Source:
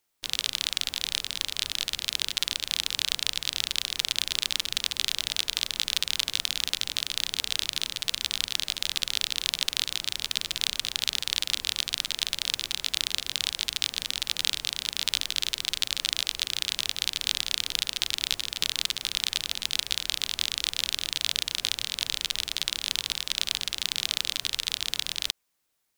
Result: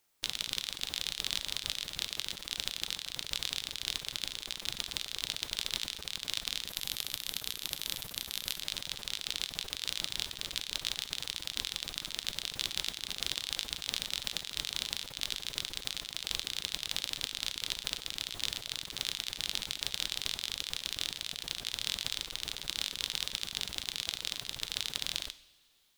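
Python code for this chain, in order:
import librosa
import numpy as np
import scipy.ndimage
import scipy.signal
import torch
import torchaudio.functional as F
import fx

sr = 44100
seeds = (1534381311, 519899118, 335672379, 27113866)

y = fx.peak_eq(x, sr, hz=13000.0, db=12.0, octaves=0.68, at=(6.68, 8.6))
y = fx.over_compress(y, sr, threshold_db=-36.0, ratio=-1.0)
y = fx.rev_double_slope(y, sr, seeds[0], early_s=0.72, late_s=3.1, knee_db=-18, drr_db=12.5)
y = F.gain(torch.from_numpy(y), -3.0).numpy()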